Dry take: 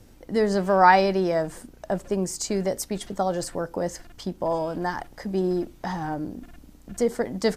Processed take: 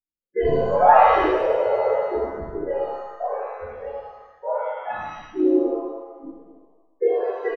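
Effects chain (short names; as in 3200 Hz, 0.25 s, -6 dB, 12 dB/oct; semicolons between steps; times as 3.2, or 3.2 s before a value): sine-wave speech; wind noise 290 Hz -38 dBFS; gate -27 dBFS, range -57 dB; wow and flutter 48 cents; loudest bins only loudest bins 8; harmoniser -5 st -17 dB, -3 st -6 dB; echo 0.295 s -19 dB; spectral freeze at 1.33, 0.60 s; shimmer reverb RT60 1 s, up +7 st, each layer -8 dB, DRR -7 dB; gain -6 dB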